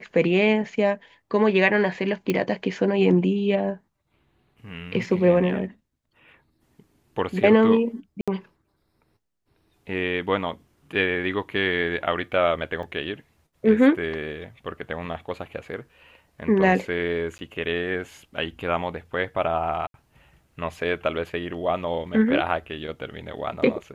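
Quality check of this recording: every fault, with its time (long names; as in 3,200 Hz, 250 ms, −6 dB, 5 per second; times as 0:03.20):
0:02.30: click −10 dBFS
0:08.21–0:08.28: drop-out 66 ms
0:12.83: drop-out 2.6 ms
0:17.38–0:17.39: drop-out 10 ms
0:19.87–0:19.94: drop-out 72 ms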